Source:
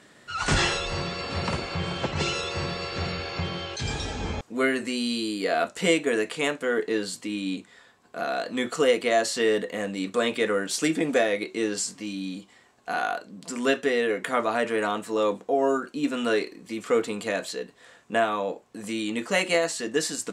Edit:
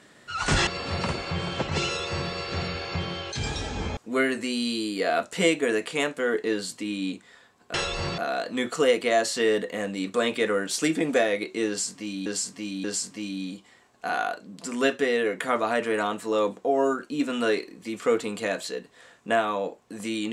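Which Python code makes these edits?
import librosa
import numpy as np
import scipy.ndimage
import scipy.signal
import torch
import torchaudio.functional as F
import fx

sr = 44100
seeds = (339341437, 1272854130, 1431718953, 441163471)

y = fx.edit(x, sr, fx.move(start_s=0.67, length_s=0.44, to_s=8.18),
    fx.repeat(start_s=11.68, length_s=0.58, count=3), tone=tone)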